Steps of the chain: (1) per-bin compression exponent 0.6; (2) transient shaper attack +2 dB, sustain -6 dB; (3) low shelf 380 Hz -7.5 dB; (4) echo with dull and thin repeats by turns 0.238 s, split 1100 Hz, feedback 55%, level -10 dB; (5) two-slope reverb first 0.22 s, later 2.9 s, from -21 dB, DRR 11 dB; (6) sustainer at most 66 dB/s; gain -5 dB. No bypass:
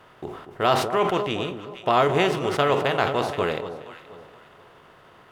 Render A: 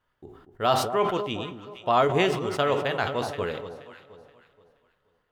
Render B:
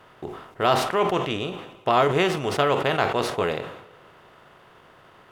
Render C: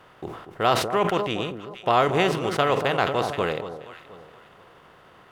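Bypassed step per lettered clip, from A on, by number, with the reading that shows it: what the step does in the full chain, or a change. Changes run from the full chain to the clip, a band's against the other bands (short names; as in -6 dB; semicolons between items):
1, 8 kHz band +2.0 dB; 4, momentary loudness spread change -3 LU; 5, 8 kHz band +2.0 dB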